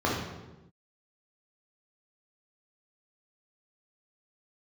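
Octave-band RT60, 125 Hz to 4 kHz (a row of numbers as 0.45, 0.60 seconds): 1.3, 1.3, 1.1, 0.95, 0.85, 0.75 seconds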